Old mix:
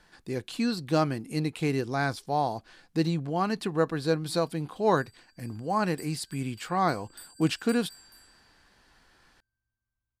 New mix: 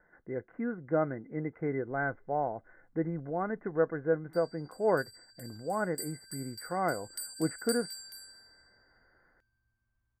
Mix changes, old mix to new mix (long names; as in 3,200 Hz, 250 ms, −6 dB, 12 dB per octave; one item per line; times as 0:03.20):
speech: add Chebyshev low-pass with heavy ripple 2,100 Hz, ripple 9 dB
background +8.0 dB